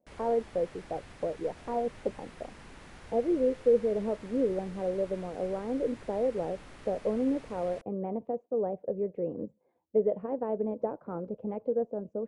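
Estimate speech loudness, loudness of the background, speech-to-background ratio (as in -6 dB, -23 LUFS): -32.0 LUFS, -51.0 LUFS, 19.0 dB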